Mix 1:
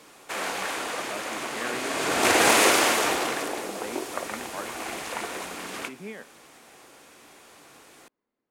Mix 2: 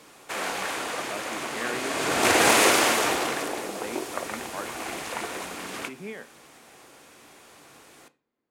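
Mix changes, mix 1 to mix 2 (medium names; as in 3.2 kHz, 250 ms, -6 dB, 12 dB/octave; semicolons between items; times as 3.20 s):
speech: send on; master: add peaking EQ 110 Hz +3.5 dB 1.2 oct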